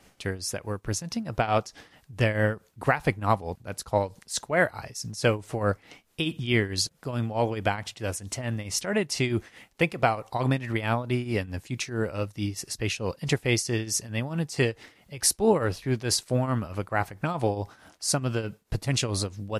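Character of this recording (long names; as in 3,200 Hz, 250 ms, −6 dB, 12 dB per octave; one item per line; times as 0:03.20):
tremolo triangle 4.6 Hz, depth 80%
MP3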